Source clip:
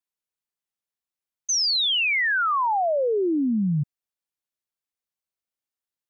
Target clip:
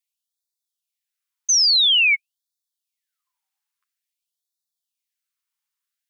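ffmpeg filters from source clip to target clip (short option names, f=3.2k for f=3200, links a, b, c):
-af "highpass=f=270:w=0.5412,highpass=f=270:w=1.3066,afftfilt=real='re*gte(b*sr/1024,810*pow(3500/810,0.5+0.5*sin(2*PI*0.49*pts/sr)))':imag='im*gte(b*sr/1024,810*pow(3500/810,0.5+0.5*sin(2*PI*0.49*pts/sr)))':win_size=1024:overlap=0.75,volume=6.5dB"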